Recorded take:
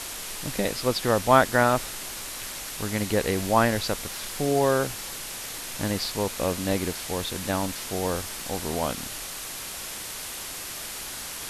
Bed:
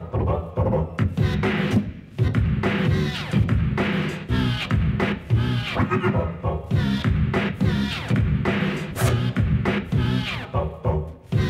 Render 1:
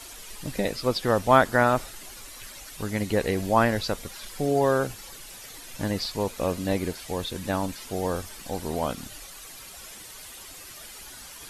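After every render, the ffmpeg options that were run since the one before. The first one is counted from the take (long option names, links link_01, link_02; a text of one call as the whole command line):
ffmpeg -i in.wav -af "afftdn=noise_reduction=11:noise_floor=-36" out.wav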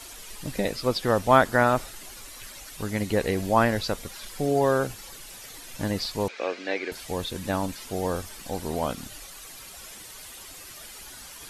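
ffmpeg -i in.wav -filter_complex "[0:a]asettb=1/sr,asplit=3[link_01][link_02][link_03];[link_01]atrim=end=6.284[link_04];[link_02]atrim=start=6.28:end=6.92,asetpts=PTS-STARTPTS,afade=type=in:duration=0.004:curve=qsin,afade=type=out:start_time=0.636:duration=0.004:curve=qsin,highpass=frequency=340:width=0.5412,highpass=frequency=340:width=1.3066,equalizer=frequency=590:width_type=q:width=4:gain=-3,equalizer=frequency=1000:width_type=q:width=4:gain=-5,equalizer=frequency=1600:width_type=q:width=4:gain=7,equalizer=frequency=2300:width_type=q:width=4:gain=9,lowpass=frequency=5300:width=0.5412,lowpass=frequency=5300:width=1.3066[link_05];[link_03]atrim=start=6.916[link_06];[link_04][link_05]acrossfade=duration=0.004:curve1=hsin:curve2=qsin[link_07];[link_07][link_06]acrossfade=duration=0.004:curve1=qsin:curve2=hsin" out.wav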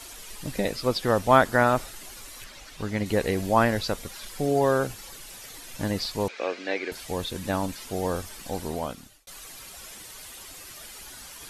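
ffmpeg -i in.wav -filter_complex "[0:a]asettb=1/sr,asplit=3[link_01][link_02][link_03];[link_01]atrim=end=2.444[link_04];[link_02]atrim=start=2.44:end=3.06,asetpts=PTS-STARTPTS,afade=type=in:duration=0.004:curve=qsin,afade=type=out:start_time=0.616:duration=0.004:curve=qsin,acrossover=split=6000[link_05][link_06];[link_06]acompressor=threshold=-56dB:ratio=4:attack=1:release=60[link_07];[link_05][link_07]amix=inputs=2:normalize=0[link_08];[link_03]atrim=start=3.056[link_09];[link_04][link_08]acrossfade=duration=0.004:curve1=hsin:curve2=qsin[link_10];[link_10][link_09]acrossfade=duration=0.004:curve1=qsin:curve2=hsin,asplit=2[link_11][link_12];[link_11]atrim=end=9.27,asetpts=PTS-STARTPTS,afade=type=out:start_time=8.61:duration=0.66[link_13];[link_12]atrim=start=9.27,asetpts=PTS-STARTPTS,afade=type=in:duration=0.004:curve=hsin[link_14];[link_13][link_14]concat=n=2:v=0:a=1" out.wav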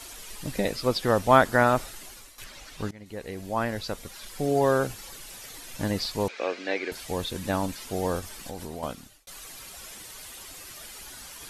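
ffmpeg -i in.wav -filter_complex "[0:a]asettb=1/sr,asplit=3[link_01][link_02][link_03];[link_01]atrim=end=8.194[link_04];[link_02]atrim=start=8.19:end=8.83,asetpts=PTS-STARTPTS,afade=type=in:duration=0.004:curve=qsin,afade=type=out:start_time=0.636:duration=0.004:curve=qsin,acompressor=threshold=-32dB:ratio=5:attack=3.2:release=140:knee=1:detection=peak[link_05];[link_03]atrim=start=8.826[link_06];[link_04][link_05]acrossfade=duration=0.004:curve1=hsin:curve2=qsin[link_07];[link_07][link_06]acrossfade=duration=0.004:curve1=qsin:curve2=hsin,asplit=3[link_08][link_09][link_10];[link_08]atrim=end=2.38,asetpts=PTS-STARTPTS,afade=type=out:start_time=1.84:duration=0.54:curve=qsin:silence=0.237137[link_11];[link_09]atrim=start=2.38:end=2.91,asetpts=PTS-STARTPTS,afade=type=in:duration=0.004:curve=hsin:silence=0.237137,afade=type=out:start_time=0.526:duration=0.004:curve=hsin:silence=0.0794328[link_12];[link_10]atrim=start=2.91,asetpts=PTS-STARTPTS,afade=type=in:duration=1.78:silence=0.0794328[link_13];[link_11][link_12][link_13]concat=n=3:v=0:a=1" out.wav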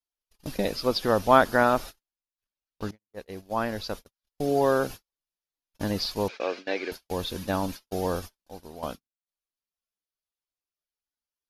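ffmpeg -i in.wav -af "agate=range=-53dB:threshold=-35dB:ratio=16:detection=peak,equalizer=frequency=125:width_type=o:width=0.33:gain=-7,equalizer=frequency=2000:width_type=o:width=0.33:gain=-5,equalizer=frequency=5000:width_type=o:width=0.33:gain=3,equalizer=frequency=8000:width_type=o:width=0.33:gain=-11" out.wav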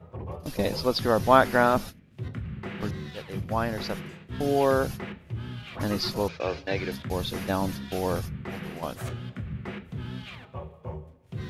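ffmpeg -i in.wav -i bed.wav -filter_complex "[1:a]volume=-14.5dB[link_01];[0:a][link_01]amix=inputs=2:normalize=0" out.wav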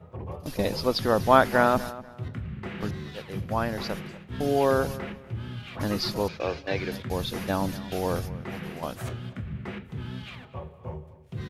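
ffmpeg -i in.wav -filter_complex "[0:a]asplit=2[link_01][link_02];[link_02]adelay=243,lowpass=frequency=2700:poles=1,volume=-16.5dB,asplit=2[link_03][link_04];[link_04]adelay=243,lowpass=frequency=2700:poles=1,volume=0.28,asplit=2[link_05][link_06];[link_06]adelay=243,lowpass=frequency=2700:poles=1,volume=0.28[link_07];[link_01][link_03][link_05][link_07]amix=inputs=4:normalize=0" out.wav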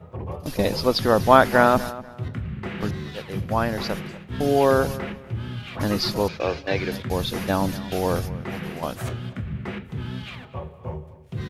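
ffmpeg -i in.wav -af "volume=4.5dB,alimiter=limit=-1dB:level=0:latency=1" out.wav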